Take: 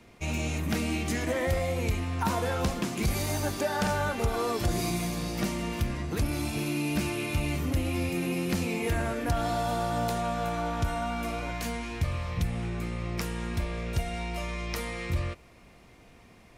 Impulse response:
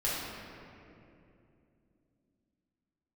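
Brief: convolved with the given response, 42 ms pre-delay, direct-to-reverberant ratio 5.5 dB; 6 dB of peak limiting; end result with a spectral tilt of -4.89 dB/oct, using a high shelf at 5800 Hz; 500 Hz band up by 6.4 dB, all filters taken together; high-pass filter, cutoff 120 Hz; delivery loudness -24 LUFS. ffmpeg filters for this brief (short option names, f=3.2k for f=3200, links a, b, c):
-filter_complex "[0:a]highpass=120,equalizer=f=500:t=o:g=8,highshelf=f=5.8k:g=5,alimiter=limit=-19dB:level=0:latency=1,asplit=2[a][b];[1:a]atrim=start_sample=2205,adelay=42[c];[b][c]afir=irnorm=-1:irlink=0,volume=-13.5dB[d];[a][d]amix=inputs=2:normalize=0,volume=4.5dB"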